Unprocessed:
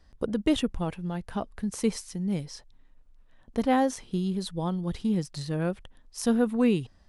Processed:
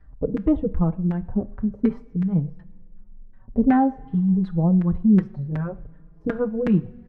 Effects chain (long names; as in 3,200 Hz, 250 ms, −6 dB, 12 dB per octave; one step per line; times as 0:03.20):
bass and treble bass +14 dB, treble −1 dB
auto-filter low-pass saw down 2.7 Hz 320–1,800 Hz
0:05.60–0:06.21: high-frequency loss of the air 210 metres
coupled-rooms reverb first 0.46 s, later 2.3 s, from −17 dB, DRR 13.5 dB
barber-pole flanger 4.6 ms +0.51 Hz